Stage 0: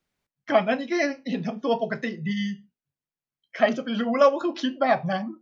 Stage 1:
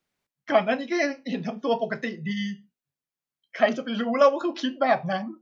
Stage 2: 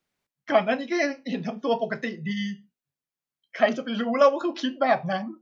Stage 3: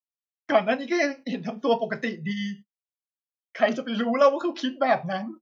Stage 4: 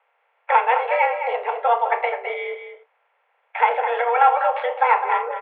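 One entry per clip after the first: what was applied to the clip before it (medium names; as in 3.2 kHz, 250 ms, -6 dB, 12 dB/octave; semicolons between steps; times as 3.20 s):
bass shelf 110 Hz -8.5 dB
no audible change
gate -41 dBFS, range -40 dB; random flutter of the level, depth 60%; trim +3 dB
spectral levelling over time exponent 0.6; mistuned SSB +240 Hz 220–2500 Hz; echo from a far wall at 36 m, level -8 dB; trim +1.5 dB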